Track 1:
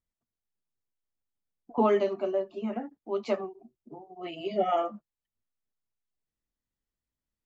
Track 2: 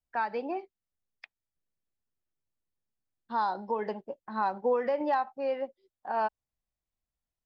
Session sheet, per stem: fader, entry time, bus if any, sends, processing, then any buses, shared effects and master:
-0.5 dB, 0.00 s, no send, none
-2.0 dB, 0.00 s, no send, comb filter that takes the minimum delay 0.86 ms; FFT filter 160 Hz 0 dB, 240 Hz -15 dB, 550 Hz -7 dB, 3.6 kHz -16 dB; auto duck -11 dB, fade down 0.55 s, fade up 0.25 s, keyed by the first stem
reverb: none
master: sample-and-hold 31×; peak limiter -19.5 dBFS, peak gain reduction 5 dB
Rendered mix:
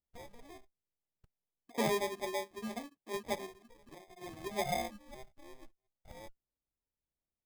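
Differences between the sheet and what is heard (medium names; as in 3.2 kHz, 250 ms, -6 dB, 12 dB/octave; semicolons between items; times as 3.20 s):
stem 1 -0.5 dB -> -8.5 dB; stem 2 -2.0 dB -> -8.5 dB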